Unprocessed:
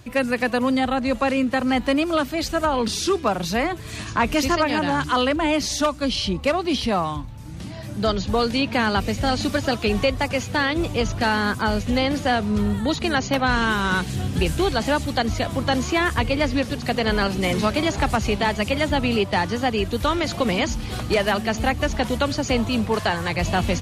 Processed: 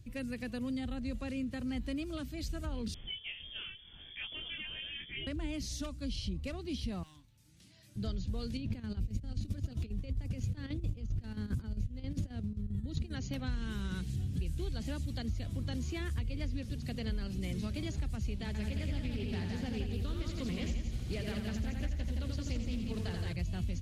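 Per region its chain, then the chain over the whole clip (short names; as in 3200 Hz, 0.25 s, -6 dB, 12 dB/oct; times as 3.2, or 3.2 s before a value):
2.94–5.27 CVSD 64 kbps + chorus 1.7 Hz, delay 17.5 ms, depth 7.2 ms + inverted band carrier 3400 Hz
7.03–7.96 HPF 1400 Hz 6 dB/oct + hard clip -33 dBFS
8.57–13.13 low shelf 460 Hz +8.5 dB + negative-ratio compressor -23 dBFS + chopper 7.5 Hz, depth 65%, duty 70%
18.46–23.33 multi-head echo 85 ms, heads first and second, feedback 45%, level -6 dB + Doppler distortion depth 0.26 ms
whole clip: passive tone stack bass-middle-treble 10-0-1; compressor, threshold -36 dBFS; gain +4.5 dB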